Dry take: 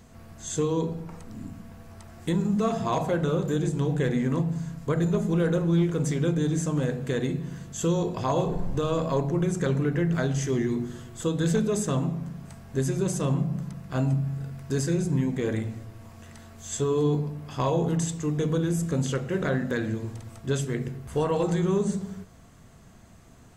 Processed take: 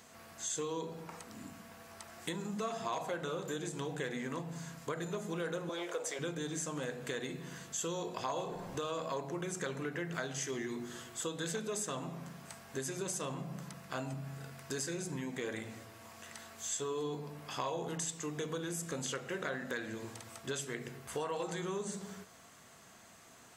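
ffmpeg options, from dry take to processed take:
-filter_complex "[0:a]asettb=1/sr,asplit=3[s0][s1][s2];[s0]atrim=end=5.694[s3];[s1]atrim=start=5.69:end=6.19,asetpts=PTS-STARTPTS,afade=t=in:d=0.004:c=qsin,afade=t=out:st=0.496:d=0.004:c=qsin,highpass=f=570:t=q:w=2.9[s4];[s2]atrim=start=6.186[s5];[s3][s4]acrossfade=d=0.004:c1=hsin:c2=qsin[s6];[s6][s5]acrossfade=d=0.004:c1=qsin:c2=hsin,highpass=f=990:p=1,acompressor=threshold=0.00891:ratio=2.5,volume=1.41"

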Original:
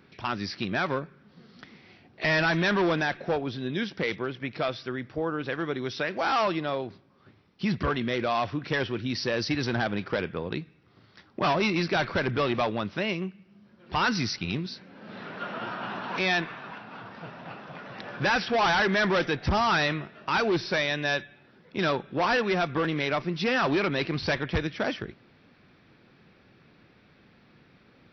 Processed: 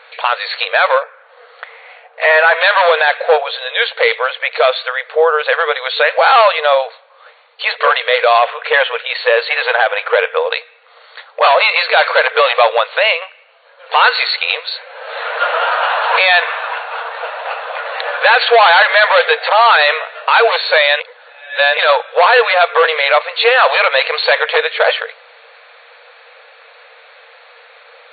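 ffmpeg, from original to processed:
-filter_complex "[0:a]asettb=1/sr,asplit=3[s0][s1][s2];[s0]atrim=end=1.034[s3];[s1]atrim=start=1.03:end=2.61,asetpts=PTS-STARTPTS,afade=t=in:d=0.004:c=qsin,afade=t=out:st=1.576:d=0.004:c=qsin,lowpass=2200[s4];[s2]atrim=start=2.606[s5];[s3][s4]acrossfade=d=0.004:c1=hsin:c2=qsin[s6];[s6][s5]acrossfade=d=0.004:c1=qsin:c2=hsin,asettb=1/sr,asplit=3[s7][s8][s9];[s7]atrim=end=8.384[s10];[s8]atrim=start=8.38:end=10.36,asetpts=PTS-STARTPTS,afade=t=in:d=0.004:c=qsin,afade=t=out:st=1.976:d=0.004:c=qsin,lowpass=f=3500:w=0.5412,lowpass=f=3500:w=1.3066[s11];[s9]atrim=start=10.356[s12];[s10][s11]acrossfade=d=0.004:c1=hsin:c2=qsin[s13];[s13][s12]acrossfade=d=0.004:c1=qsin:c2=hsin,asplit=3[s14][s15][s16];[s14]atrim=end=21.002[s17];[s15]atrim=start=20.998:end=21.772,asetpts=PTS-STARTPTS,areverse[s18];[s16]atrim=start=21.768[s19];[s17][s18]acrossfade=d=0.004:c1=hsin:c2=hsin[s20];[s20][s19]acrossfade=d=0.004:c1=hsin:c2=hsin,afftfilt=real='re*between(b*sr/4096,450,4500)':imag='im*between(b*sr/4096,450,4500)':win_size=4096:overlap=0.75,alimiter=level_in=11.9:limit=0.891:release=50:level=0:latency=1,volume=0.891"

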